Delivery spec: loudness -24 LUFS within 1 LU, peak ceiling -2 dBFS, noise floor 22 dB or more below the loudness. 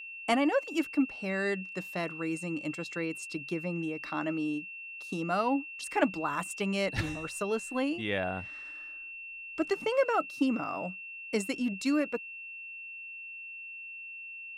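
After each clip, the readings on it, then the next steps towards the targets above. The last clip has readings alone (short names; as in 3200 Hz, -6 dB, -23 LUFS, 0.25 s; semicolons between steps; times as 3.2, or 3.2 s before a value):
steady tone 2700 Hz; tone level -41 dBFS; loudness -33.0 LUFS; peak -15.0 dBFS; loudness target -24.0 LUFS
-> notch 2700 Hz, Q 30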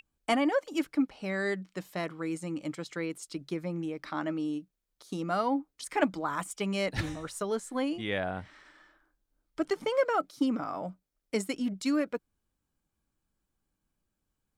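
steady tone none; loudness -32.5 LUFS; peak -15.5 dBFS; loudness target -24.0 LUFS
-> gain +8.5 dB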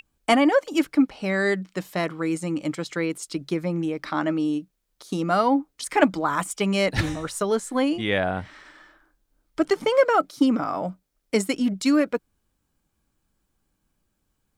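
loudness -24.0 LUFS; peak -7.0 dBFS; noise floor -75 dBFS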